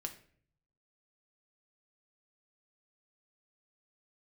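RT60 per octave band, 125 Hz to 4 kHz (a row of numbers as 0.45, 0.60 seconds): 1.1, 0.75, 0.60, 0.45, 0.50, 0.40 seconds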